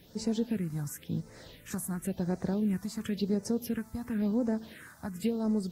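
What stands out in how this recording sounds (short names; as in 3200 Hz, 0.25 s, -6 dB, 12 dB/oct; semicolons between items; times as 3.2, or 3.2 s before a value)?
a quantiser's noise floor 10-bit, dither triangular; phasing stages 4, 0.95 Hz, lowest notch 440–3100 Hz; AAC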